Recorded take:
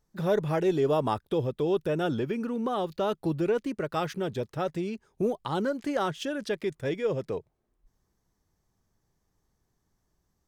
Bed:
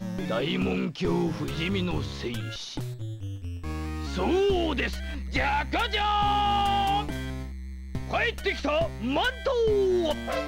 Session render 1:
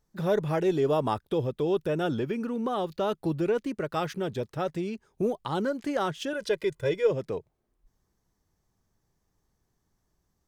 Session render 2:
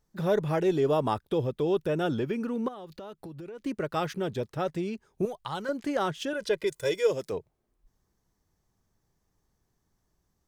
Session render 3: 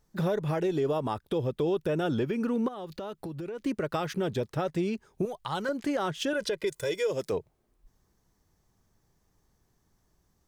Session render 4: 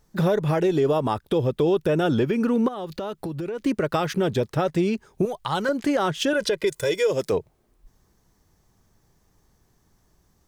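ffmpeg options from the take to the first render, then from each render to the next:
-filter_complex "[0:a]asettb=1/sr,asplit=3[a][b][c];[a]atrim=end=6.334[d];[b]atrim=start=6.33:end=7.11,asetpts=PTS-STARTPTS,afade=t=in:d=0.004:c=qsin,afade=t=out:st=0.776:d=0.004:c=qsin,aecho=1:1:2:0.81,atrim=end_sample=34398[e];[c]atrim=start=7.106[f];[d][e]acrossfade=d=0.004:c1=hsin:c2=qsin[g];[g][f]acrossfade=d=0.004:c1=qsin:c2=hsin"
-filter_complex "[0:a]asettb=1/sr,asplit=3[a][b][c];[a]atrim=end=2.684[d];[b]atrim=start=2.68:end=3.6,asetpts=PTS-STARTPTS,afade=t=in:d=0.004:c=qsin,afade=t=out:st=0.916:d=0.004:c=qsin,acompressor=threshold=-39dB:ratio=8:attack=3.2:release=140:knee=1:detection=peak[e];[c]atrim=start=3.596[f];[d][e]acrossfade=d=0.004:c1=hsin:c2=qsin[g];[g][f]acrossfade=d=0.004:c1=qsin:c2=hsin,asettb=1/sr,asplit=3[h][i][j];[h]atrim=end=5.254[k];[i]atrim=start=5.25:end=5.69,asetpts=PTS-STARTPTS,afade=t=in:d=0.004:c=qsin,afade=t=out:st=0.436:d=0.004:c=qsin,equalizer=f=290:t=o:w=1.6:g=-14[l];[j]atrim=start=5.686[m];[k][l]acrossfade=d=0.004:c1=hsin:c2=qsin[n];[n][m]acrossfade=d=0.004:c1=qsin:c2=hsin,asplit=3[o][p][q];[o]afade=t=out:st=6.66:d=0.02[r];[p]bass=f=250:g=-8,treble=f=4k:g=13,afade=t=in:st=6.66:d=0.02,afade=t=out:st=7.31:d=0.02[s];[q]afade=t=in:st=7.31:d=0.02[t];[r][s][t]amix=inputs=3:normalize=0"
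-filter_complex "[0:a]asplit=2[a][b];[b]acompressor=threshold=-33dB:ratio=6,volume=-3dB[c];[a][c]amix=inputs=2:normalize=0,alimiter=limit=-20.5dB:level=0:latency=1:release=126"
-af "volume=7dB"

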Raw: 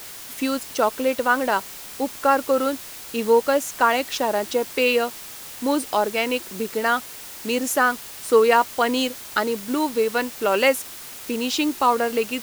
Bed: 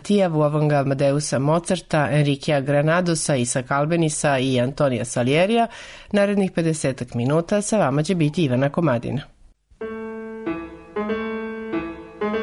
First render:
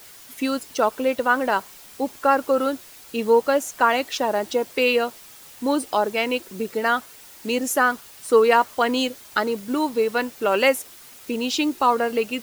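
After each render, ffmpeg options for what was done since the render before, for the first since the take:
-af "afftdn=nr=8:nf=-38"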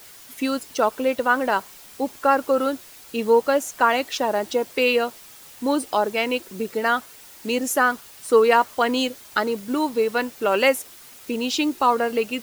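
-af anull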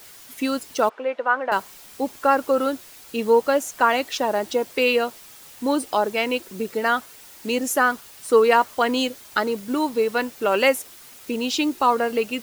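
-filter_complex "[0:a]asettb=1/sr,asplit=3[a][b][c];[a]atrim=end=0.894[d];[b]atrim=start=0.89:end=1.52,asetpts=PTS-STARTPTS,afade=t=in:d=0.004:c=qsin,afade=t=out:st=0.626:d=0.004:c=qsin,highpass=520,lowpass=2k[e];[c]atrim=start=1.516[f];[d][e]acrossfade=d=0.004:c1=hsin:c2=qsin[g];[g][f]acrossfade=d=0.004:c1=qsin:c2=hsin"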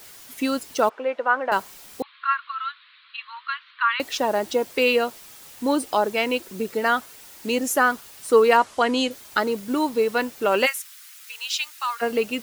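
-filter_complex "[0:a]asettb=1/sr,asplit=3[a][b][c];[a]atrim=end=2.024[d];[b]atrim=start=2.02:end=4,asetpts=PTS-STARTPTS,afade=t=in:d=0.004:c=qsin,afade=t=out:st=1.976:d=0.004:c=qsin,asuperpass=centerf=2100:order=20:qfactor=0.67[e];[c]atrim=start=3.996[f];[d][e]acrossfade=d=0.004:c1=hsin:c2=qsin[g];[g][f]acrossfade=d=0.004:c1=qsin:c2=hsin,asettb=1/sr,asplit=3[h][i][j];[h]atrim=end=8.574[k];[i]atrim=start=8.57:end=9.11,asetpts=PTS-STARTPTS,afade=t=in:d=0.004:c=qsin,afade=t=out:st=0.536:d=0.004:c=qsin,lowpass=f=10k:w=0.5412,lowpass=f=10k:w=1.3066[l];[j]atrim=start=9.106[m];[k][l]acrossfade=d=0.004:c1=hsin:c2=qsin[n];[n][m]acrossfade=d=0.004:c1=qsin:c2=hsin,asplit=3[o][p][q];[o]afade=t=out:st=10.65:d=0.02[r];[p]highpass=f=1.3k:w=0.5412,highpass=f=1.3k:w=1.3066,afade=t=in:st=10.65:d=0.02,afade=t=out:st=12.01:d=0.02[s];[q]afade=t=in:st=12.01:d=0.02[t];[r][s][t]amix=inputs=3:normalize=0"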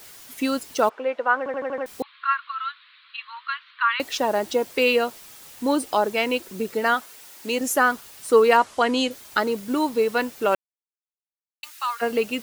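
-filter_complex "[0:a]asettb=1/sr,asplit=3[a][b][c];[a]atrim=end=6.944[d];[b]atrim=start=6.94:end=7.61,asetpts=PTS-STARTPTS,afade=t=in:d=0.004:c=qsin,afade=t=out:st=0.666:d=0.004:c=qsin,lowshelf=f=180:g=-11[e];[c]atrim=start=7.606[f];[d][e]acrossfade=d=0.004:c1=hsin:c2=qsin[g];[g][f]acrossfade=d=0.004:c1=qsin:c2=hsin,asplit=9[h][i][j][k][l][m][n][o][p];[h]atrim=end=1.462[q];[i]atrim=start=1.378:end=1.462[r];[j]atrim=start=1.378:end=1.462[s];[k]atrim=start=1.378:end=1.462[t];[l]atrim=start=1.378:end=1.462[u];[m]atrim=start=1.378:end=1.462[v];[n]atrim=start=1.858:end=10.55,asetpts=PTS-STARTPTS,afade=t=out:st=8.688:d=0.004:c=hsin[w];[o]atrim=start=10.55:end=11.63,asetpts=PTS-STARTPTS,volume=0[x];[p]atrim=start=11.63,asetpts=PTS-STARTPTS,afade=t=in:d=0.004:c=hsin[y];[q][r]acrossfade=d=0.004:c1=hsin:c2=hsin[z];[z][s]acrossfade=d=0.004:c1=hsin:c2=hsin[aa];[aa][t]acrossfade=d=0.004:c1=hsin:c2=hsin[ab];[ab][u]acrossfade=d=0.004:c1=hsin:c2=hsin[ac];[ac][v]acrossfade=d=0.004:c1=hsin:c2=hsin[ad];[w][x][y]concat=n=3:v=0:a=1[ae];[ad][ae]acrossfade=d=0.004:c1=hsin:c2=hsin"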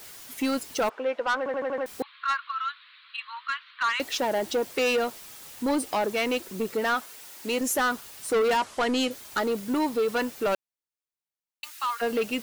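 -af "asoftclip=type=tanh:threshold=-20dB"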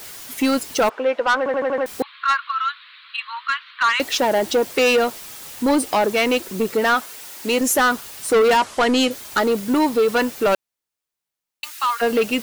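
-af "volume=8dB"

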